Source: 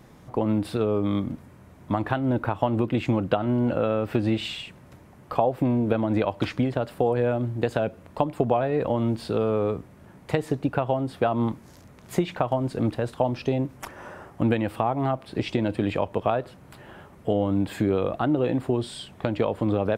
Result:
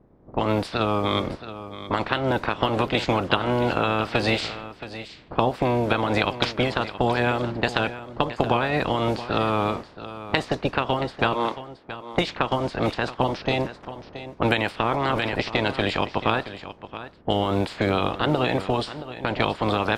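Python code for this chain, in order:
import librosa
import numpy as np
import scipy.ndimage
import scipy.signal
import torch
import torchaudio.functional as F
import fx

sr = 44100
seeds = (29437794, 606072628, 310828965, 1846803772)

y = fx.spec_clip(x, sr, under_db=20)
y = fx.highpass(y, sr, hz=260.0, slope=12, at=(11.34, 12.14))
y = fx.env_lowpass(y, sr, base_hz=330.0, full_db=-19.5)
y = fx.peak_eq(y, sr, hz=4700.0, db=7.0, octaves=0.9)
y = y + 10.0 ** (-13.5 / 20.0) * np.pad(y, (int(674 * sr / 1000.0), 0))[:len(y)]
y = fx.sustainer(y, sr, db_per_s=24.0, at=(14.89, 15.37), fade=0.02)
y = y * librosa.db_to_amplitude(1.0)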